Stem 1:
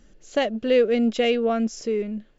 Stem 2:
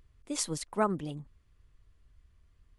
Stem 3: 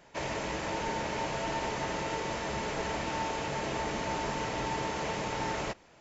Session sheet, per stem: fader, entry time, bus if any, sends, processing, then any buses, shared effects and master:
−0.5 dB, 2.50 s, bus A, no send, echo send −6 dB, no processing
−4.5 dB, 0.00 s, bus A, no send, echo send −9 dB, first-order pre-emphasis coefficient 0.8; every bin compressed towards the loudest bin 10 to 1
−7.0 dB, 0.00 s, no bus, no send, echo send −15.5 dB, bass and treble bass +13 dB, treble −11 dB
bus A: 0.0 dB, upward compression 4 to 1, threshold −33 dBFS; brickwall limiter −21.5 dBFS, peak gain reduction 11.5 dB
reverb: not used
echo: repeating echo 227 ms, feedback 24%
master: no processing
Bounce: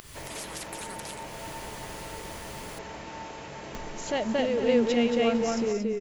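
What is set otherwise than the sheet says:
stem 1: entry 2.50 s → 3.75 s
stem 3: missing bass and treble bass +13 dB, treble −11 dB

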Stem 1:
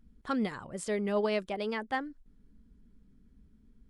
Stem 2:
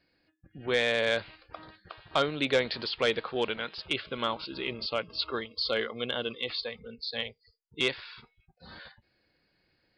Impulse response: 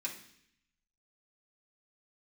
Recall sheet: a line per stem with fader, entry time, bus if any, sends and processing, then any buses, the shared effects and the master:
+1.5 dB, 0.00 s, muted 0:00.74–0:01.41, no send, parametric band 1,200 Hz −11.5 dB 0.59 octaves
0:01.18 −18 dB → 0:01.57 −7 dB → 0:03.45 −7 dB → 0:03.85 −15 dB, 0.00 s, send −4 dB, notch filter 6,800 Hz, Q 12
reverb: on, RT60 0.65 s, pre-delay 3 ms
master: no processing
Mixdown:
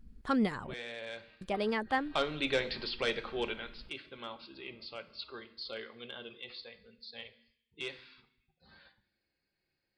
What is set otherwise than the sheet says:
stem 1: missing parametric band 1,200 Hz −11.5 dB 0.59 octaves
master: extra low-shelf EQ 78 Hz +5.5 dB

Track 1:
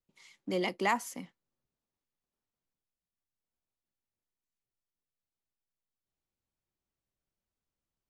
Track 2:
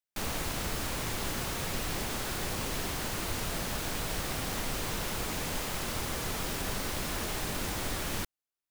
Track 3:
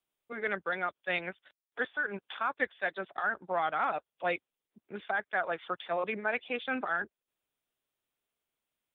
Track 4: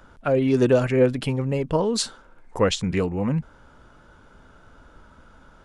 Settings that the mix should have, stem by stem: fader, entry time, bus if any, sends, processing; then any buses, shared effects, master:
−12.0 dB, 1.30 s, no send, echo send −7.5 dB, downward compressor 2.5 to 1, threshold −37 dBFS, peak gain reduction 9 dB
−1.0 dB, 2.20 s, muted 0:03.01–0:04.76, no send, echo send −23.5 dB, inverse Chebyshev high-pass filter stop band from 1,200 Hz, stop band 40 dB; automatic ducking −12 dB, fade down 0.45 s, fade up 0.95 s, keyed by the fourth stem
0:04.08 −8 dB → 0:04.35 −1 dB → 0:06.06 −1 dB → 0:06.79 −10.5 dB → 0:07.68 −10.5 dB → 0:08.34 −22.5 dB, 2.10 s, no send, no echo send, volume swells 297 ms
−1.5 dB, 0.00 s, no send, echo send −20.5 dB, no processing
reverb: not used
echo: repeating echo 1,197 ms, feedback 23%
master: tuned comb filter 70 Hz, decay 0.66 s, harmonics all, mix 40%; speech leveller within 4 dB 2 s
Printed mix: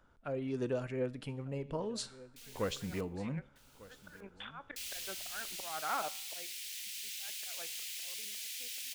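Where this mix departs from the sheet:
stem 1: muted
stem 4 −1.5 dB → −12.5 dB

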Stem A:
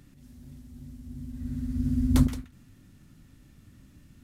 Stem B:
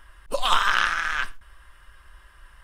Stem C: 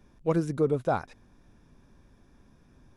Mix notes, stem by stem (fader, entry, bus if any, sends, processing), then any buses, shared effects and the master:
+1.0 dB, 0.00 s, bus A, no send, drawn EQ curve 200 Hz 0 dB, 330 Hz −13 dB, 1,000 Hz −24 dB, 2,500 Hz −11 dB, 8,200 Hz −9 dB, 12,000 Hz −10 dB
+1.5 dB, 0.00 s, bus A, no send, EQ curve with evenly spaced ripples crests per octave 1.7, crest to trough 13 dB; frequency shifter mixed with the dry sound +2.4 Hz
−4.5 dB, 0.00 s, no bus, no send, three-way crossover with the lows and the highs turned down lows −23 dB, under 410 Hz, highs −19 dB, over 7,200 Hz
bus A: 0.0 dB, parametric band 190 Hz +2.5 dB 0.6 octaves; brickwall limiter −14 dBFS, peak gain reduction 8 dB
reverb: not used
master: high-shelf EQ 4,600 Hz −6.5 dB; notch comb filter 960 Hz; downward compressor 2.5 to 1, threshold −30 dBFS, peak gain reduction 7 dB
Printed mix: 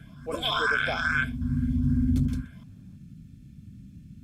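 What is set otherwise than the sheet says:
stem A +1.0 dB → +10.5 dB
master: missing downward compressor 2.5 to 1, threshold −30 dBFS, peak gain reduction 7 dB

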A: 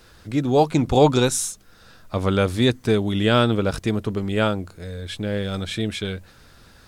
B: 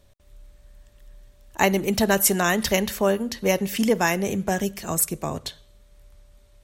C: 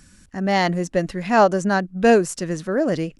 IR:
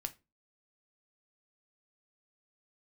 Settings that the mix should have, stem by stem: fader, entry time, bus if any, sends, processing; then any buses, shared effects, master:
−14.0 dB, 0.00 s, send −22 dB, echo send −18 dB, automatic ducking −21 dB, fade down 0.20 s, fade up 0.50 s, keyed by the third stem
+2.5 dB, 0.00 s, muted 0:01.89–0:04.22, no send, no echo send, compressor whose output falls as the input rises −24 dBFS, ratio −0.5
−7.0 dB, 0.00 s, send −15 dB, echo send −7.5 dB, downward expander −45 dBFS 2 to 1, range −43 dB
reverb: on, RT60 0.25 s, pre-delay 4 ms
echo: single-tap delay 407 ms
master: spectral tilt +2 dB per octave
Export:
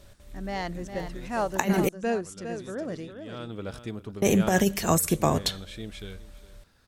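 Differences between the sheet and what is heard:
stem C −7.0 dB → −14.5 dB
master: missing spectral tilt +2 dB per octave

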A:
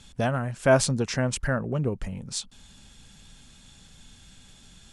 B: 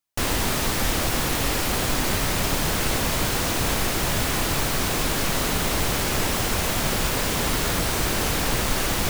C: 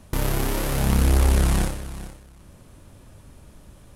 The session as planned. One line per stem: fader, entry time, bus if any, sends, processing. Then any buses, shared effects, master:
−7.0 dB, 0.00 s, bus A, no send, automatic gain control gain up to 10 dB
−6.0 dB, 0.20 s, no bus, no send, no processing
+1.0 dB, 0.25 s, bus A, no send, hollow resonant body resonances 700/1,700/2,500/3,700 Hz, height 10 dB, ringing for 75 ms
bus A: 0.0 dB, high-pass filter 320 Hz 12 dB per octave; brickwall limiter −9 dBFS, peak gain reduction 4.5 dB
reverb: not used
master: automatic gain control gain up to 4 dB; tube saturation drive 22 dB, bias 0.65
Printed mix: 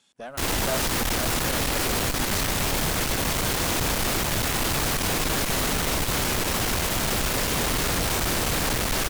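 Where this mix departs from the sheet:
stem B −6.0 dB → +4.5 dB
stem C +1.0 dB → −7.0 dB

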